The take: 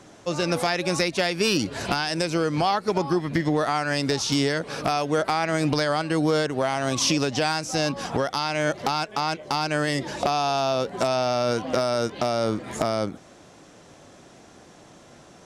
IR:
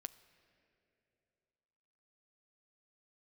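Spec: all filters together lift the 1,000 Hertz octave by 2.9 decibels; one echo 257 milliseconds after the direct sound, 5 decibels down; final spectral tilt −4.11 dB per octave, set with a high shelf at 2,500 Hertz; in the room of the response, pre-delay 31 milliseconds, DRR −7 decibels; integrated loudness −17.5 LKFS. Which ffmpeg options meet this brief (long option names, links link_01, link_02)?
-filter_complex "[0:a]equalizer=frequency=1000:width_type=o:gain=5,highshelf=frequency=2500:gain=-5.5,aecho=1:1:257:0.562,asplit=2[link_01][link_02];[1:a]atrim=start_sample=2205,adelay=31[link_03];[link_02][link_03]afir=irnorm=-1:irlink=0,volume=11.5dB[link_04];[link_01][link_04]amix=inputs=2:normalize=0,volume=-2.5dB"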